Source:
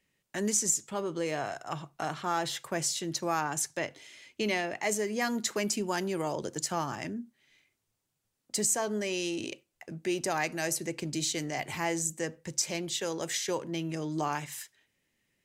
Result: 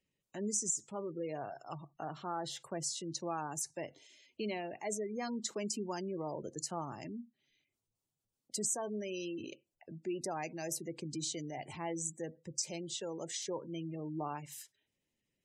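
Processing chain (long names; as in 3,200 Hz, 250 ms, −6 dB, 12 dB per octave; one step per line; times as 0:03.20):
gate on every frequency bin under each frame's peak −20 dB strong
parametric band 1,800 Hz −9 dB 0.87 octaves
level −6.5 dB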